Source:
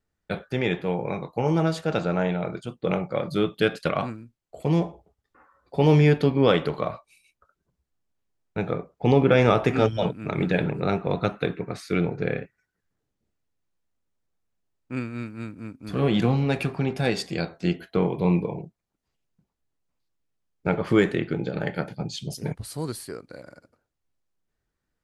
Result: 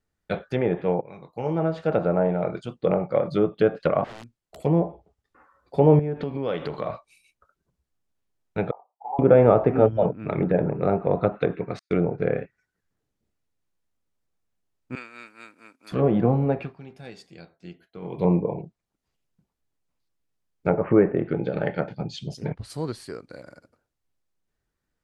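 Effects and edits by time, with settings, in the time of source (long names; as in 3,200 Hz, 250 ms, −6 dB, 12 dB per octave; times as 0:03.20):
0:01.01–0:01.99: fade in, from −21 dB
0:04.04–0:04.63: wrap-around overflow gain 35.5 dB
0:05.99–0:06.88: downward compressor 5 to 1, threshold −26 dBFS
0:08.71–0:09.19: flat-topped band-pass 840 Hz, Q 4.1
0:10.06–0:10.84: high-shelf EQ 3,400 Hz −9.5 dB
0:11.79–0:12.35: noise gate −37 dBFS, range −42 dB
0:14.95–0:15.92: high-pass filter 750 Hz
0:16.48–0:18.27: duck −17.5 dB, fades 0.26 s
0:20.70–0:21.17: Butterworth low-pass 2,800 Hz 96 dB per octave
0:21.73–0:22.70: high-shelf EQ 6,200 Hz −8.5 dB
whole clip: treble cut that deepens with the level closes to 1,100 Hz, closed at −20 dBFS; dynamic equaliser 580 Hz, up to +6 dB, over −35 dBFS, Q 1.4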